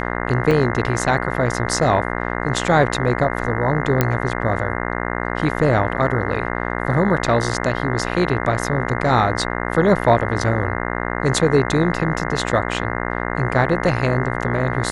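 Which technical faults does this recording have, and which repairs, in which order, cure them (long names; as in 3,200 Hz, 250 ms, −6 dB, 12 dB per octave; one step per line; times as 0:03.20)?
mains buzz 60 Hz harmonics 35 −24 dBFS
0:00.51: drop-out 3.1 ms
0:04.01: click −2 dBFS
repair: click removal
hum removal 60 Hz, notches 35
repair the gap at 0:00.51, 3.1 ms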